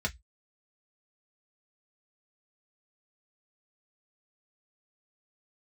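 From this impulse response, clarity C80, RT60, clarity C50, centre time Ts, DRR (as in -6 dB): 38.0 dB, 0.10 s, 25.0 dB, 6 ms, 0.0 dB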